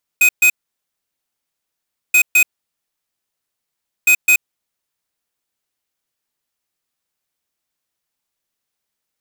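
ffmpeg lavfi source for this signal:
ffmpeg -f lavfi -i "aevalsrc='0.299*(2*lt(mod(2510*t,1),0.5)-1)*clip(min(mod(mod(t,1.93),0.21),0.08-mod(mod(t,1.93),0.21))/0.005,0,1)*lt(mod(t,1.93),0.42)':duration=5.79:sample_rate=44100" out.wav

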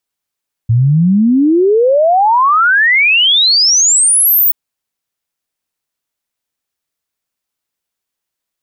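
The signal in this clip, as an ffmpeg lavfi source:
ffmpeg -f lavfi -i "aevalsrc='0.473*clip(min(t,3.83-t)/0.01,0,1)*sin(2*PI*110*3.83/log(16000/110)*(exp(log(16000/110)*t/3.83)-1))':duration=3.83:sample_rate=44100" out.wav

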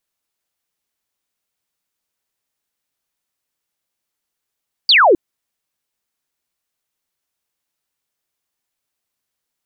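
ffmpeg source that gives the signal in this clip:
ffmpeg -f lavfi -i "aevalsrc='0.447*clip(t/0.002,0,1)*clip((0.26-t)/0.002,0,1)*sin(2*PI*4900*0.26/log(310/4900)*(exp(log(310/4900)*t/0.26)-1))':duration=0.26:sample_rate=44100" out.wav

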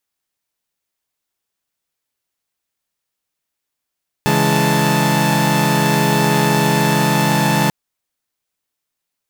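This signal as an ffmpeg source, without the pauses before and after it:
ffmpeg -f lavfi -i "aevalsrc='0.158*((2*mod(138.59*t,1)-1)+(2*mod(164.81*t,1)-1)+(2*mod(207.65*t,1)-1)+(2*mod(880*t,1)-1))':duration=3.44:sample_rate=44100" out.wav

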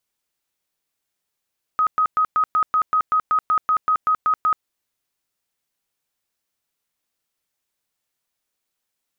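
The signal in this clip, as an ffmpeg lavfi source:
ffmpeg -f lavfi -i "aevalsrc='0.188*sin(2*PI*1260*mod(t,0.19))*lt(mod(t,0.19),99/1260)':duration=2.85:sample_rate=44100" out.wav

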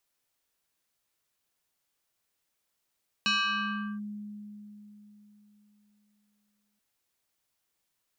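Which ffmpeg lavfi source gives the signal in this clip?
ffmpeg -f lavfi -i "aevalsrc='0.075*pow(10,-3*t/3.79)*sin(2*PI*208*t+3.1*clip(1-t/0.74,0,1)*sin(2*PI*6.61*208*t))':duration=3.53:sample_rate=44100" out.wav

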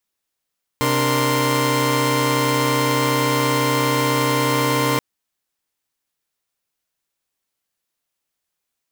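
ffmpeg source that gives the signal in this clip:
ffmpeg -f lavfi -i "aevalsrc='0.1*((2*mod(130.81*t,1)-1)+(2*mod(293.66*t,1)-1)+(2*mod(466.16*t,1)-1)+(2*mod(1046.5*t,1)-1))':duration=4.18:sample_rate=44100" out.wav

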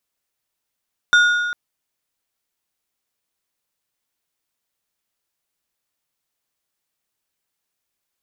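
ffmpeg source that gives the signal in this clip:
ffmpeg -f lavfi -i "aevalsrc='0.376*pow(10,-3*t/1.64)*sin(2*PI*1440*t)+0.126*pow(10,-3*t/1.246)*sin(2*PI*3600*t)+0.0422*pow(10,-3*t/1.082)*sin(2*PI*5760*t)+0.0141*pow(10,-3*t/1.012)*sin(2*PI*7200*t)+0.00473*pow(10,-3*t/0.935)*sin(2*PI*9360*t)':duration=0.4:sample_rate=44100" out.wav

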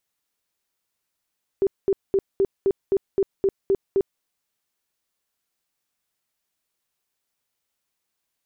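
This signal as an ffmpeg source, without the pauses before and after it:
ffmpeg -f lavfi -i "aevalsrc='0.168*sin(2*PI*391*mod(t,0.26))*lt(mod(t,0.26),19/391)':duration=2.6:sample_rate=44100" out.wav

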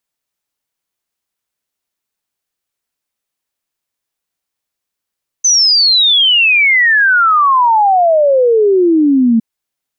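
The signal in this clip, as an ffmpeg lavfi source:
ffmpeg -f lavfi -i "aevalsrc='0.473*clip(min(t,3.96-t)/0.01,0,1)*sin(2*PI*6200*3.96/log(220/6200)*(exp(log(220/6200)*t/3.96)-1))':duration=3.96:sample_rate=44100" out.wav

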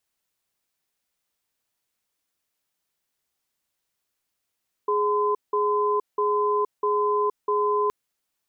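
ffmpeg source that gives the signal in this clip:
ffmpeg -f lavfi -i "aevalsrc='0.075*(sin(2*PI*417*t)+sin(2*PI*1020*t))*clip(min(mod(t,0.65),0.47-mod(t,0.65))/0.005,0,1)':duration=3.02:sample_rate=44100" out.wav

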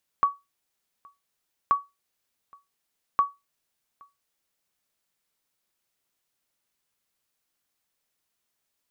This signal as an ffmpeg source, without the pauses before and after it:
ffmpeg -f lavfi -i "aevalsrc='0.237*(sin(2*PI*1130*mod(t,1.48))*exp(-6.91*mod(t,1.48)/0.21)+0.0335*sin(2*PI*1130*max(mod(t,1.48)-0.82,0))*exp(-6.91*max(mod(t,1.48)-0.82,0)/0.21))':duration=4.44:sample_rate=44100" out.wav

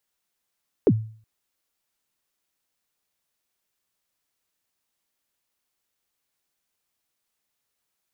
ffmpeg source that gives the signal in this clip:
ffmpeg -f lavfi -i "aevalsrc='0.299*pow(10,-3*t/0.47)*sin(2*PI*(500*0.053/log(110/500)*(exp(log(110/500)*min(t,0.053)/0.053)-1)+110*max(t-0.053,0)))':duration=0.37:sample_rate=44100" out.wav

